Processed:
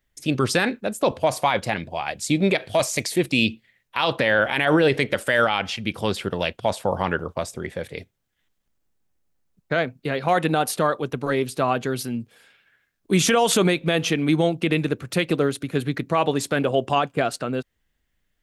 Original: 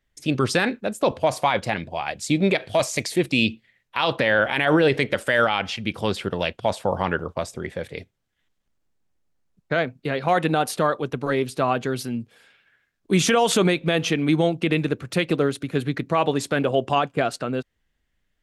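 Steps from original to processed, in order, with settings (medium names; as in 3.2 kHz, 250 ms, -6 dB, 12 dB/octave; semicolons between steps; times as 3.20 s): treble shelf 11 kHz +9.5 dB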